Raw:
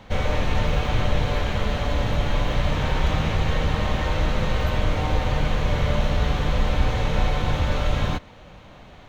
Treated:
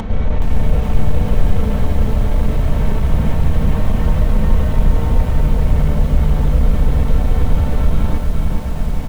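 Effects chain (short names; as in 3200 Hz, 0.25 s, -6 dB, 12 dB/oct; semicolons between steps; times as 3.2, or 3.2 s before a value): high shelf 2400 Hz -11 dB; in parallel at -2 dB: compressor 6:1, threshold -29 dBFS, peak gain reduction 15 dB; on the sum: low shelf 310 Hz +11.5 dB; on a send: feedback echo 0.521 s, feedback 47%, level -17 dB; on the sum: upward compressor, threshold -10 dBFS; soft clip -4.5 dBFS, distortion -15 dB; comb 4.5 ms, depth 40%; lo-fi delay 0.42 s, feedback 55%, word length 6-bit, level -3.5 dB; gain -3.5 dB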